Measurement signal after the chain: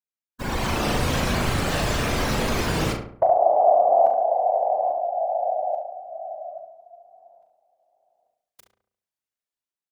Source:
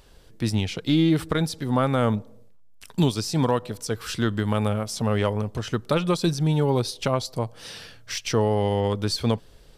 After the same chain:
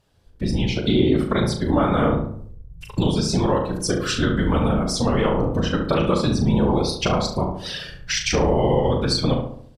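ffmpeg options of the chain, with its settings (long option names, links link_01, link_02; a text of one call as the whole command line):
ffmpeg -i in.wav -filter_complex "[0:a]afftfilt=real='hypot(re,im)*cos(2*PI*random(0))':imag='hypot(re,im)*sin(2*PI*random(1))':win_size=512:overlap=0.75,highshelf=frequency=9400:gain=-3,bandreject=frequency=50:width_type=h:width=6,bandreject=frequency=100:width_type=h:width=6,bandreject=frequency=150:width_type=h:width=6,bandreject=frequency=200:width_type=h:width=6,bandreject=frequency=250:width_type=h:width=6,bandreject=frequency=300:width_type=h:width=6,bandreject=frequency=350:width_type=h:width=6,bandreject=frequency=400:width_type=h:width=6,dynaudnorm=framelen=220:gausssize=5:maxgain=9dB,afftdn=noise_reduction=14:noise_floor=-37,acompressor=threshold=-32dB:ratio=2.5,asplit=2[link_01][link_02];[link_02]adelay=38,volume=-7dB[link_03];[link_01][link_03]amix=inputs=2:normalize=0,asplit=2[link_04][link_05];[link_05]adelay=70,lowpass=frequency=1700:poles=1,volume=-4.5dB,asplit=2[link_06][link_07];[link_07]adelay=70,lowpass=frequency=1700:poles=1,volume=0.49,asplit=2[link_08][link_09];[link_09]adelay=70,lowpass=frequency=1700:poles=1,volume=0.49,asplit=2[link_10][link_11];[link_11]adelay=70,lowpass=frequency=1700:poles=1,volume=0.49,asplit=2[link_12][link_13];[link_13]adelay=70,lowpass=frequency=1700:poles=1,volume=0.49,asplit=2[link_14][link_15];[link_15]adelay=70,lowpass=frequency=1700:poles=1,volume=0.49[link_16];[link_04][link_06][link_08][link_10][link_12][link_14][link_16]amix=inputs=7:normalize=0,volume=9dB" out.wav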